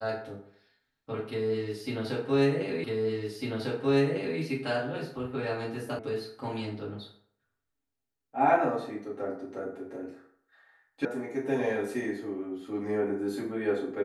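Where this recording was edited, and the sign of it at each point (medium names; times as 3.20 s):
2.84 s: repeat of the last 1.55 s
5.99 s: sound stops dead
11.05 s: sound stops dead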